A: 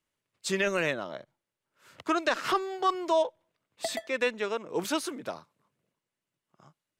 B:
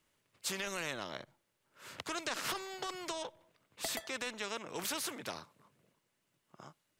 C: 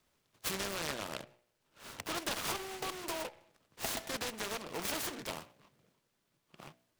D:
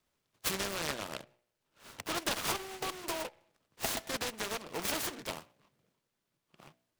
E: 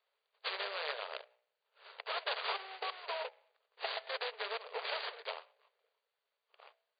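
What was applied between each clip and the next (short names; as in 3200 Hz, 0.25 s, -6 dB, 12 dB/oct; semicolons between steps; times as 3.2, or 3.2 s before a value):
limiter -20 dBFS, peak gain reduction 4.5 dB; spectral compressor 2:1; gain -2 dB
de-hum 60.33 Hz, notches 14; noise-modulated delay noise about 1600 Hz, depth 0.12 ms; gain +1.5 dB
upward expander 1.5:1, over -51 dBFS; gain +4 dB
in parallel at -5 dB: overloaded stage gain 30 dB; on the sum: brick-wall FIR band-pass 400–4800 Hz; gain -4.5 dB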